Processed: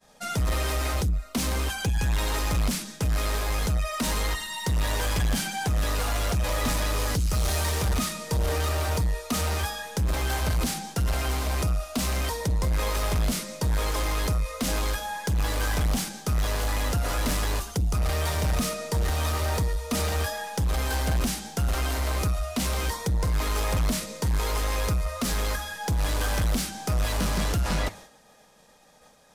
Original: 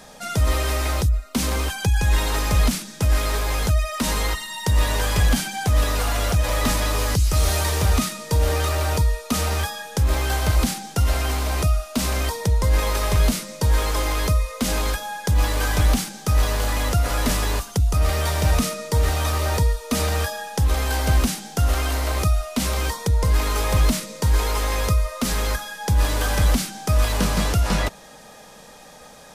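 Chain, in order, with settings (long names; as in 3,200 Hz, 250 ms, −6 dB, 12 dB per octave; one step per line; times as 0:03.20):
downward expander −36 dBFS
flanger 1.9 Hz, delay 4.3 ms, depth 5.3 ms, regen −89%
soft clipping −23.5 dBFS, distortion −12 dB
level +3 dB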